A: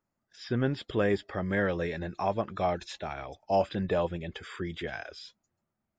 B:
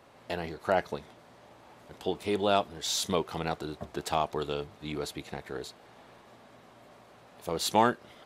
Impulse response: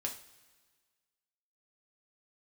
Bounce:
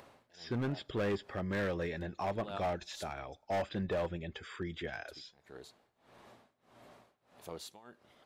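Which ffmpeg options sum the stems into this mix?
-filter_complex "[0:a]asoftclip=type=hard:threshold=-25dB,volume=-5dB,asplit=3[a][b][c];[b]volume=-21dB[d];[1:a]acompressor=mode=upward:threshold=-35dB:ratio=2.5,tremolo=f=1.6:d=0.95,volume=-12.5dB,asplit=3[e][f][g];[e]atrim=end=3.1,asetpts=PTS-STARTPTS,afade=t=out:st=3.096:d=0.004:c=hsin[h];[f]atrim=start=3.1:end=5.08,asetpts=PTS-STARTPTS,volume=0[i];[g]atrim=start=5.08,asetpts=PTS-STARTPTS,afade=t=in:d=0.004:c=hsin[j];[h][i][j]concat=n=3:v=0:a=1,asplit=2[k][l];[l]volume=-19.5dB[m];[c]apad=whole_len=363961[n];[k][n]sidechaincompress=threshold=-49dB:ratio=8:attack=49:release=162[o];[2:a]atrim=start_sample=2205[p];[d][m]amix=inputs=2:normalize=0[q];[q][p]afir=irnorm=-1:irlink=0[r];[a][o][r]amix=inputs=3:normalize=0"

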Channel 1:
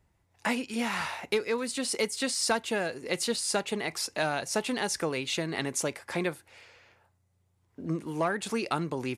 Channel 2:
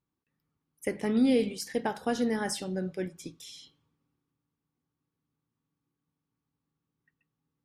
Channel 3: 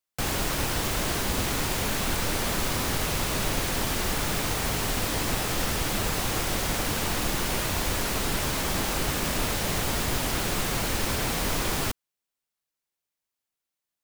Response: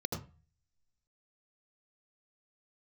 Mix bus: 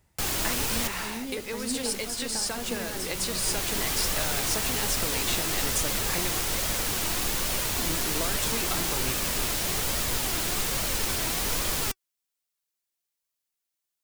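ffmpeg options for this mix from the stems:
-filter_complex "[0:a]volume=2dB[a];[1:a]volume=-6dB,asplit=3[b][c][d];[c]volume=-3.5dB[e];[2:a]flanger=delay=1.5:depth=1.7:regen=70:speed=1.2:shape=triangular,volume=0dB[f];[d]apad=whole_len=618808[g];[f][g]sidechaincompress=threshold=-42dB:ratio=10:attack=46:release=1260[h];[a][b]amix=inputs=2:normalize=0,acompressor=threshold=-33dB:ratio=6,volume=0dB[i];[e]aecho=0:1:497:1[j];[h][i][j]amix=inputs=3:normalize=0,highshelf=f=3k:g=8"

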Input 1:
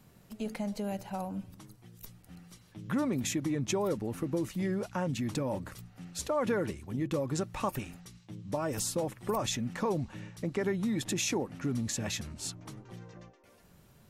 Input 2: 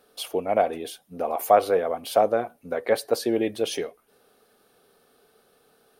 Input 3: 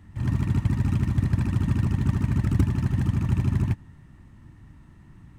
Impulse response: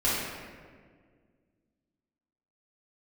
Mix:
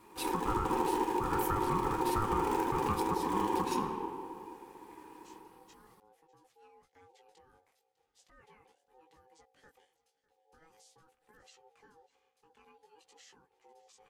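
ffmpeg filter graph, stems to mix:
-filter_complex "[0:a]acrossover=split=7300[a][b];[b]acompressor=threshold=-52dB:ratio=4:attack=1:release=60[c];[a][c]amix=inputs=2:normalize=0,equalizer=f=410:t=o:w=1.7:g=-14,flanger=delay=15:depth=6.1:speed=0.43,adelay=2000,volume=-18.5dB,asplit=2[d][e];[e]volume=-20.5dB[f];[1:a]equalizer=f=2.2k:t=o:w=1.4:g=-8.5,acompressor=threshold=-27dB:ratio=2,volume=-2dB,asplit=2[g][h];[h]volume=-19.5dB[i];[2:a]highpass=f=320:t=q:w=3.5,aemphasis=mode=production:type=50kf,asoftclip=type=tanh:threshold=-18dB,volume=-5dB,asplit=2[j][k];[k]volume=-8dB[l];[3:a]atrim=start_sample=2205[m];[i][l]amix=inputs=2:normalize=0[n];[n][m]afir=irnorm=-1:irlink=0[o];[f]aecho=0:1:601:1[p];[d][g][j][o][p]amix=inputs=5:normalize=0,highpass=f=97:w=0.5412,highpass=f=97:w=1.3066,aeval=exprs='val(0)*sin(2*PI*640*n/s)':c=same,alimiter=limit=-20dB:level=0:latency=1:release=189"

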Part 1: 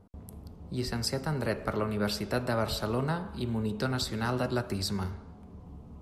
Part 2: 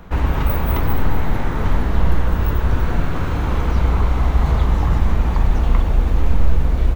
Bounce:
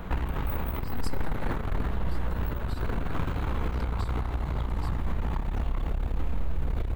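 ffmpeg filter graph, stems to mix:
-filter_complex "[0:a]acompressor=threshold=-36dB:ratio=6,volume=0dB[a];[1:a]bandreject=f=80.95:t=h:w=4,bandreject=f=161.9:t=h:w=4,bandreject=f=242.85:t=h:w=4,bandreject=f=323.8:t=h:w=4,bandreject=f=404.75:t=h:w=4,bandreject=f=485.7:t=h:w=4,bandreject=f=566.65:t=h:w=4,bandreject=f=647.6:t=h:w=4,bandreject=f=728.55:t=h:w=4,bandreject=f=809.5:t=h:w=4,bandreject=f=890.45:t=h:w=4,bandreject=f=971.4:t=h:w=4,bandreject=f=1.05235k:t=h:w=4,bandreject=f=1.1333k:t=h:w=4,bandreject=f=1.21425k:t=h:w=4,bandreject=f=1.2952k:t=h:w=4,bandreject=f=1.37615k:t=h:w=4,bandreject=f=1.4571k:t=h:w=4,bandreject=f=1.53805k:t=h:w=4,bandreject=f=1.619k:t=h:w=4,bandreject=f=1.69995k:t=h:w=4,bandreject=f=1.7809k:t=h:w=4,bandreject=f=1.86185k:t=h:w=4,bandreject=f=1.9428k:t=h:w=4,bandreject=f=2.02375k:t=h:w=4,bandreject=f=2.1047k:t=h:w=4,bandreject=f=2.18565k:t=h:w=4,bandreject=f=2.2666k:t=h:w=4,bandreject=f=2.34755k:t=h:w=4,bandreject=f=2.4285k:t=h:w=4,bandreject=f=2.50945k:t=h:w=4,alimiter=limit=-14.5dB:level=0:latency=1:release=151,aeval=exprs='0.188*(cos(1*acos(clip(val(0)/0.188,-1,1)))-cos(1*PI/2))+0.0596*(cos(2*acos(clip(val(0)/0.188,-1,1)))-cos(2*PI/2))':c=same,volume=2.5dB[b];[a][b]amix=inputs=2:normalize=0,equalizer=f=5.7k:t=o:w=0.53:g=-6.5,alimiter=limit=-19dB:level=0:latency=1:release=188"

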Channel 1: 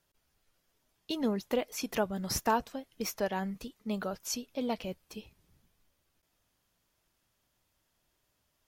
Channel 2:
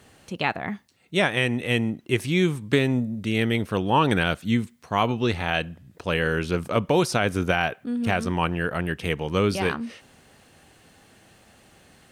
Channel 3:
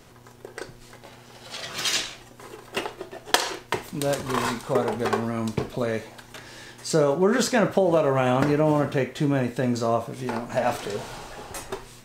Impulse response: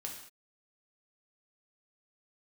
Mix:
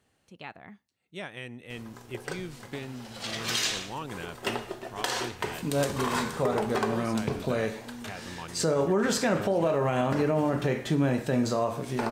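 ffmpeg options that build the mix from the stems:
-filter_complex "[1:a]volume=-17.5dB[a];[2:a]adelay=1700,volume=-3dB,asplit=2[b][c];[c]volume=-4.5dB[d];[3:a]atrim=start_sample=2205[e];[d][e]afir=irnorm=-1:irlink=0[f];[a][b][f]amix=inputs=3:normalize=0,alimiter=limit=-16.5dB:level=0:latency=1:release=96"

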